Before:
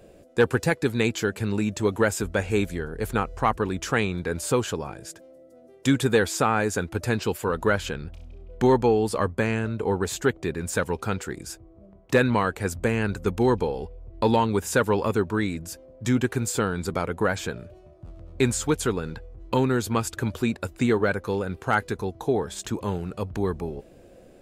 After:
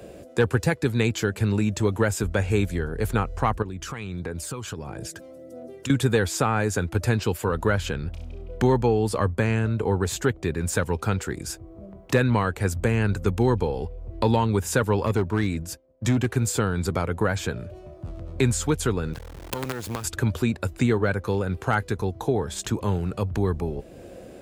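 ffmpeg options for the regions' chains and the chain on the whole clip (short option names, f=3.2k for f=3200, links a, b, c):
-filter_complex "[0:a]asettb=1/sr,asplit=3[a][b][c];[a]atrim=end=3.624[d];[b]atrim=start=3.62:end=5.9,asetpts=PTS-STARTPTS,afade=t=in:d=0.004:c=qsin,afade=t=out:st=2.276:d=0.004:c=qsin,acompressor=threshold=-39dB:ratio=4:attack=3.2:release=140:knee=1:detection=peak,aphaser=in_gain=1:out_gain=1:delay=1:decay=0.44:speed=1.5:type=triangular[e];[c]atrim=start=5.896[f];[d][e]acrossfade=d=0.004:c1=hsin:c2=qsin[g];[g][f]acrossfade=d=0.004:c1=qsin:c2=hsin,asettb=1/sr,asplit=3[h][i][j];[h]atrim=end=15.064[k];[i]atrim=start=15.06:end=16.37,asetpts=PTS-STARTPTS,afade=t=in:d=0.004:c=qsin,afade=t=out:st=1.306:d=0.004:c=qsin,highshelf=f=8.2k:g=-2,asoftclip=type=hard:threshold=-18dB,agate=range=-33dB:threshold=-36dB:ratio=3:release=100:detection=peak[l];[j]atrim=start=16.366[m];[k][l]acrossfade=d=0.004:c1=hsin:c2=qsin[n];[n][m]acrossfade=d=0.004:c1=qsin:c2=hsin,asettb=1/sr,asplit=3[o][p][q];[o]atrim=end=19.134[r];[p]atrim=start=19.13:end=20.04,asetpts=PTS-STARTPTS,afade=t=in:d=0.004:c=qsin,afade=t=out:st=0.906:d=0.004:c=qsin,acompressor=threshold=-31dB:ratio=2.5:attack=3.2:release=140:knee=1:detection=peak,acrusher=bits=5:dc=4:mix=0:aa=0.000001[s];[q]atrim=start=20.036[t];[r][s]acrossfade=d=0.004:c1=hsin:c2=qsin[u];[u][t]acrossfade=d=0.004:c1=qsin:c2=hsin,highpass=44,acrossover=split=120[v][w];[w]acompressor=threshold=-46dB:ratio=1.5[x];[v][x]amix=inputs=2:normalize=0,volume=8.5dB"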